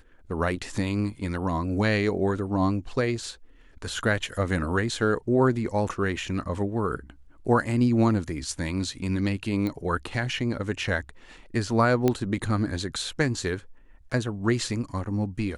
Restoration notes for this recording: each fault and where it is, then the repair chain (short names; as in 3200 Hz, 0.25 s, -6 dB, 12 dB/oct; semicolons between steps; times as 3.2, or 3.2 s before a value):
9.67 pop -19 dBFS
12.08 pop -10 dBFS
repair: de-click